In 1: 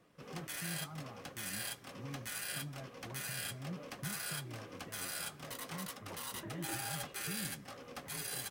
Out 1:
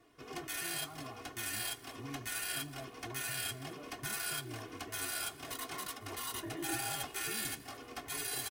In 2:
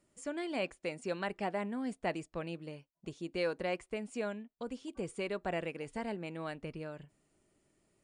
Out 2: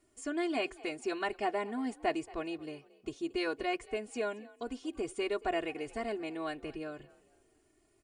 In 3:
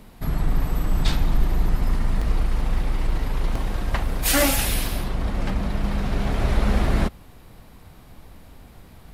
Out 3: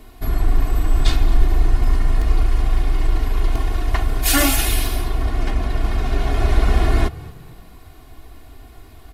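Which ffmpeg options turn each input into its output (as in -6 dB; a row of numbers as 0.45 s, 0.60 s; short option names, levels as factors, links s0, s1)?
-filter_complex "[0:a]aecho=1:1:2.8:0.99,asplit=2[s0][s1];[s1]asplit=3[s2][s3][s4];[s2]adelay=227,afreqshift=47,volume=0.0891[s5];[s3]adelay=454,afreqshift=94,volume=0.0313[s6];[s4]adelay=681,afreqshift=141,volume=0.011[s7];[s5][s6][s7]amix=inputs=3:normalize=0[s8];[s0][s8]amix=inputs=2:normalize=0"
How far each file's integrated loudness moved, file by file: +2.5 LU, +2.5 LU, +4.0 LU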